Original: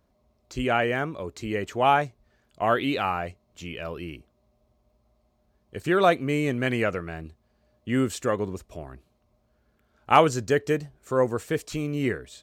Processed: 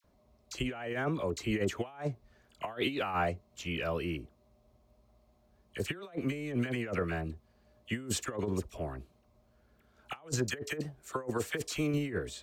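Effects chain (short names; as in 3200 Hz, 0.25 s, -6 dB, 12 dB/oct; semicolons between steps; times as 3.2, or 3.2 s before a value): dispersion lows, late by 43 ms, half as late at 1300 Hz; 10.39–11.94 low shelf 270 Hz -6 dB; negative-ratio compressor -29 dBFS, ratio -0.5; gain -4 dB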